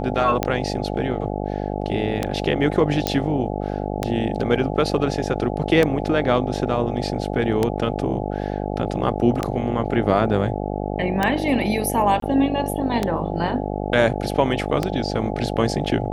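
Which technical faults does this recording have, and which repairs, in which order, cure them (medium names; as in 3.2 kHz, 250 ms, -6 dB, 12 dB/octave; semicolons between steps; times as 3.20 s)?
buzz 50 Hz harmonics 17 -26 dBFS
tick 33 1/3 rpm -6 dBFS
3.07 s: pop -5 dBFS
12.20–12.22 s: dropout 23 ms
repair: de-click; de-hum 50 Hz, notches 17; interpolate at 12.20 s, 23 ms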